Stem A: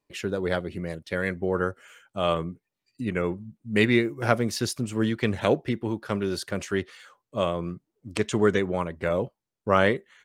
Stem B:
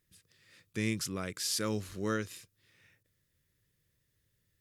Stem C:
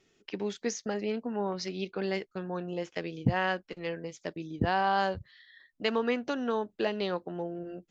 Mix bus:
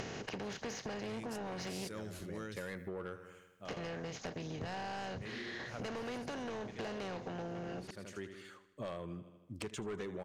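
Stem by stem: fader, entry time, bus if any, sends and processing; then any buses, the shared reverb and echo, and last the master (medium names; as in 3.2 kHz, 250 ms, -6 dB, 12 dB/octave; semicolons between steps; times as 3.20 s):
-5.0 dB, 1.45 s, no send, echo send -18.5 dB, auto duck -16 dB, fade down 0.70 s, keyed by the third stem
-5.0 dB, 0.30 s, no send, no echo send, decay stretcher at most 95 dB/s
-3.0 dB, 0.00 s, muted 1.88–3.65 s, no send, no echo send, spectral levelling over time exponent 0.4; upward compressor, threshold -31 dBFS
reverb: none
echo: feedback delay 79 ms, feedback 57%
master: saturation -26 dBFS, distortion -9 dB; compression 4:1, threshold -41 dBFS, peak gain reduction 11 dB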